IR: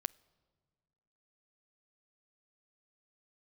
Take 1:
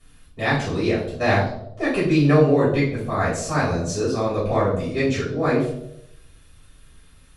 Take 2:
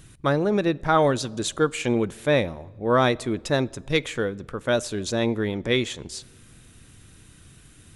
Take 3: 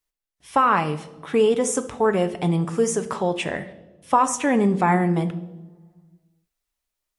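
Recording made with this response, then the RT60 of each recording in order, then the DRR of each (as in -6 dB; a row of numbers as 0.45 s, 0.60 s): 2; 0.80 s, 1.7 s, no single decay rate; -11.5 dB, 19.5 dB, 9.5 dB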